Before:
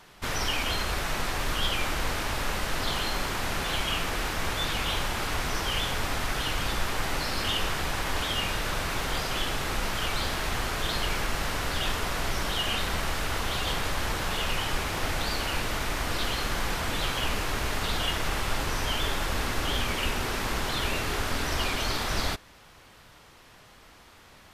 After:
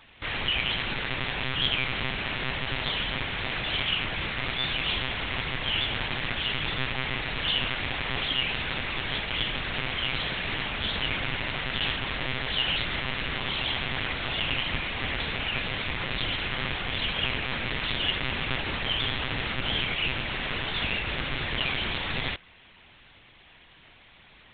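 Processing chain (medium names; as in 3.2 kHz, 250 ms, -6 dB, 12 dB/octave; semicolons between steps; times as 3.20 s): resonant high shelf 1.7 kHz +6 dB, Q 1.5; monotone LPC vocoder at 8 kHz 130 Hz; trim -3.5 dB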